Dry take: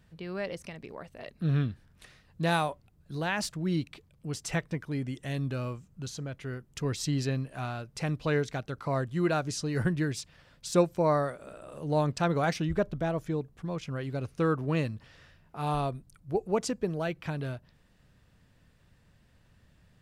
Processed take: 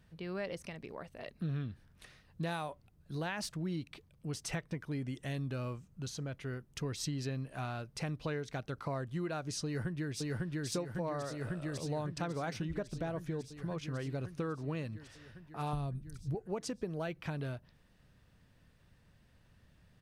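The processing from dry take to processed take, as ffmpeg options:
-filter_complex "[0:a]asplit=2[s0][s1];[s1]afade=t=in:st=9.65:d=0.01,afade=t=out:st=10.67:d=0.01,aecho=0:1:550|1100|1650|2200|2750|3300|3850|4400|4950|5500|6050|6600:0.841395|0.631046|0.473285|0.354964|0.266223|0.199667|0.14975|0.112313|0.0842345|0.0631759|0.0473819|0.0355364[s2];[s0][s2]amix=inputs=2:normalize=0,asettb=1/sr,asplit=3[s3][s4][s5];[s3]atrim=end=15.734[s6];[s4]atrim=start=15.73:end=16.35,asetpts=PTS-STARTPTS,afade=t=in:d=0.004:c=qsin,afade=t=out:st=0.616:d=0.004:c=qsin,bass=f=250:g=13,treble=f=4000:g=5[s7];[s5]atrim=start=16.346[s8];[s6][s7]acrossfade=d=0.004:c1=hsin:c2=qsin[s9];[s9][s8]acrossfade=d=0.004:c1=qsin:c2=hsin,bandreject=f=7300:w=15,acompressor=threshold=0.0282:ratio=10,volume=0.75"

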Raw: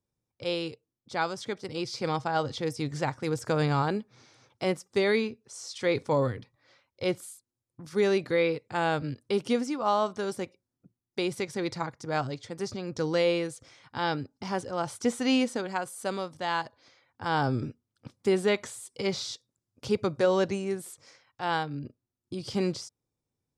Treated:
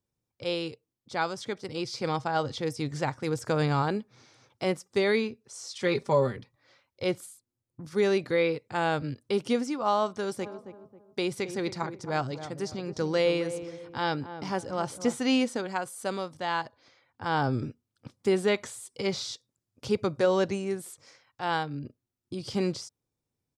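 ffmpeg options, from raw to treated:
-filter_complex "[0:a]asettb=1/sr,asplit=3[s0][s1][s2];[s0]atrim=end=5.794[s3];[s1]atrim=start=5.79:end=6.36,asetpts=PTS-STARTPTS,afade=t=in:d=0.004:c=qsin,afade=t=out:st=0.566:d=0.004:c=qsin,aecho=1:1:5.1:0.65,atrim=end_sample=25137[s4];[s2]atrim=start=6.356[s5];[s3][s4]acrossfade=d=0.004:c1=hsin:c2=qsin[s6];[s6][s5]acrossfade=d=0.004:c1=qsin:c2=hsin,asettb=1/sr,asplit=3[s7][s8][s9];[s7]atrim=end=7.264[s10];[s8]atrim=start=7.26:end=7.92,asetpts=PTS-STARTPTS,afade=t=in:d=0.004:c=qsin,afade=t=out:st=0.656:d=0.004:c=qsin,tiltshelf=f=720:g=3.5[s11];[s9]atrim=start=7.916[s12];[s10][s11]acrossfade=d=0.004:c1=hsin:c2=qsin[s13];[s13][s12]acrossfade=d=0.004:c1=qsin:c2=hsin,asplit=3[s14][s15][s16];[s14]afade=t=out:st=10.41:d=0.02[s17];[s15]asplit=2[s18][s19];[s19]adelay=270,lowpass=f=1000:p=1,volume=0.316,asplit=2[s20][s21];[s21]adelay=270,lowpass=f=1000:p=1,volume=0.39,asplit=2[s22][s23];[s23]adelay=270,lowpass=f=1000:p=1,volume=0.39,asplit=2[s24][s25];[s25]adelay=270,lowpass=f=1000:p=1,volume=0.39[s26];[s18][s20][s22][s24][s26]amix=inputs=5:normalize=0,afade=t=in:st=10.41:d=0.02,afade=t=out:st=15.17:d=0.02[s27];[s16]afade=t=in:st=15.17:d=0.02[s28];[s17][s27][s28]amix=inputs=3:normalize=0,asettb=1/sr,asplit=3[s29][s30][s31];[s29]atrim=end=16.424[s32];[s30]atrim=start=16.42:end=17.53,asetpts=PTS-STARTPTS,afade=t=in:d=0.004:c=qsin,afade=t=out:st=1.106:d=0.004:c=qsin,highshelf=f=7600:g=-7[s33];[s31]atrim=start=17.526[s34];[s32][s33]acrossfade=d=0.004:c1=hsin:c2=qsin[s35];[s35][s34]acrossfade=d=0.004:c1=qsin:c2=hsin"

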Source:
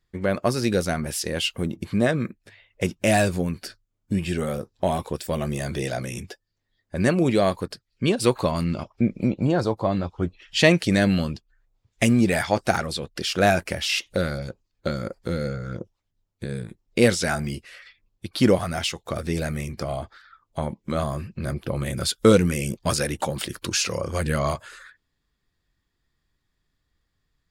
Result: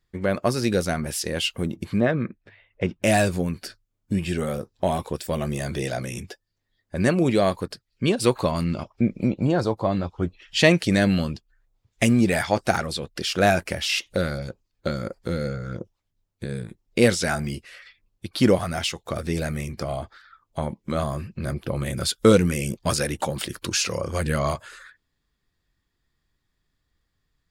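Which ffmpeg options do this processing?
-filter_complex "[0:a]asettb=1/sr,asplit=3[s0][s1][s2];[s0]atrim=end=2.004[s3];[s1]atrim=start=2:end=3.03,asetpts=PTS-STARTPTS,afade=t=in:d=0.004:c=qsin,afade=t=out:st=1.026:d=0.004:c=qsin,lowpass=2600[s4];[s2]atrim=start=3.026[s5];[s3][s4]acrossfade=d=0.004:c1=hsin:c2=qsin[s6];[s6][s5]acrossfade=d=0.004:c1=qsin:c2=hsin"

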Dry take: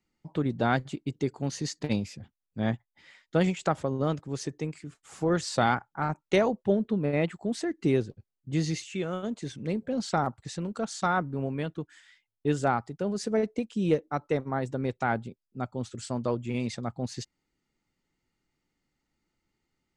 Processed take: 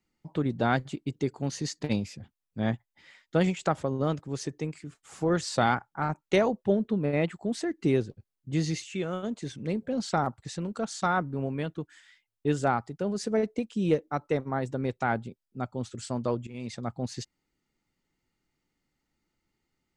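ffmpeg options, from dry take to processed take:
-filter_complex "[0:a]asplit=2[s0][s1];[s0]atrim=end=16.47,asetpts=PTS-STARTPTS,afade=t=out:st=16.466:d=0.004:c=hsin:silence=0.141254[s2];[s1]atrim=start=16.47,asetpts=PTS-STARTPTS,afade=t=in:d=0.4:silence=0.141254[s3];[s2][s3]concat=n=2:v=0:a=1"

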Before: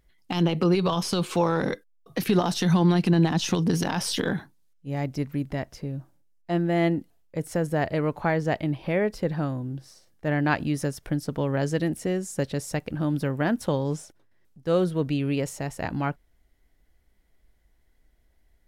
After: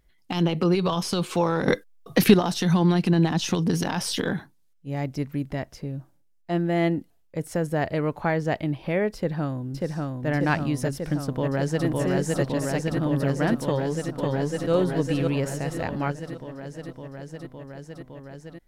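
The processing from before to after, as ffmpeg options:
-filter_complex "[0:a]asplit=2[s0][s1];[s1]afade=t=in:st=9.15:d=0.01,afade=t=out:st=10.29:d=0.01,aecho=0:1:590|1180|1770|2360|2950|3540|4130|4720|5310|5900|6490|7080:0.794328|0.635463|0.50837|0.406696|0.325357|0.260285|0.208228|0.166583|0.133266|0.106613|0.0852903|0.0682323[s2];[s0][s2]amix=inputs=2:normalize=0,asplit=2[s3][s4];[s4]afade=t=in:st=11.23:d=0.01,afade=t=out:st=11.86:d=0.01,aecho=0:1:560|1120|1680|2240|2800|3360|3920|4480|5040|5600|6160|6720:0.891251|0.757563|0.643929|0.547339|0.465239|0.395453|0.336135|0.285715|0.242857|0.206429|0.175464|0.149145[s5];[s3][s5]amix=inputs=2:normalize=0,asplit=2[s6][s7];[s7]afade=t=in:st=13.63:d=0.01,afade=t=out:st=14.72:d=0.01,aecho=0:1:550|1100|1650|2200|2750|3300:0.749894|0.337452|0.151854|0.0683341|0.0307503|0.0138377[s8];[s6][s8]amix=inputs=2:normalize=0,asplit=3[s9][s10][s11];[s9]atrim=end=1.682[s12];[s10]atrim=start=1.678:end=2.342,asetpts=PTS-STARTPTS,volume=2.66[s13];[s11]atrim=start=2.338[s14];[s12][s13]acrossfade=d=0.004:c1=hsin:c2=hsin[s15];[s15][s14]acrossfade=d=0.004:c1=hsin:c2=hsin"

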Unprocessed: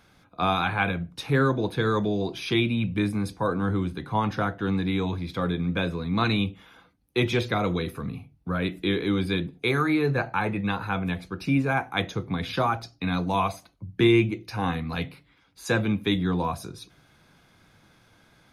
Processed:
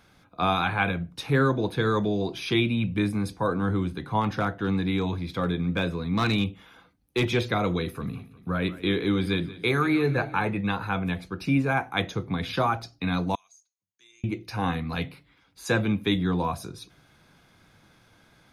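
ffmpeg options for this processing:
-filter_complex "[0:a]asettb=1/sr,asplit=3[s0][s1][s2];[s0]atrim=end=4.214[s3];[s1]atrim=start=4.21:end=7.26,asetpts=PTS-STARTPTS,afade=t=in:d=0.004:c=qsin,afade=t=out:st=3.046:d=0.004:c=qsin,asoftclip=type=hard:threshold=0.133[s4];[s2]atrim=start=7.256[s5];[s3][s4]acrossfade=d=0.004:c1=hsin:c2=qsin[s6];[s6][s5]acrossfade=d=0.004:c1=qsin:c2=hsin,asettb=1/sr,asplit=3[s7][s8][s9];[s7]atrim=end=7.834[s10];[s8]atrim=start=7.83:end=10.5,asetpts=PTS-STARTPTS,afade=t=in:d=0.004:c=qsin,afade=t=out:st=2.666:d=0.004:c=qsin,aecho=1:1:179|358|537|716|895:0.141|0.0735|0.0382|0.0199|0.0103,atrim=end_sample=117747[s11];[s9]atrim=start=10.496[s12];[s10][s11]acrossfade=d=0.004:c1=hsin:c2=qsin[s13];[s13][s12]acrossfade=d=0.004:c1=qsin:c2=hsin,asettb=1/sr,asplit=3[s14][s15][s16];[s14]atrim=end=13.354[s17];[s15]atrim=start=13.35:end=14.24,asetpts=PTS-STARTPTS,afade=t=in:d=0.004:c=qsin,afade=t=out:st=0.886:d=0.004:c=qsin,bandpass=f=6600:t=q:w=14[s18];[s16]atrim=start=14.236[s19];[s17][s18]acrossfade=d=0.004:c1=hsin:c2=qsin[s20];[s20][s19]acrossfade=d=0.004:c1=qsin:c2=hsin"

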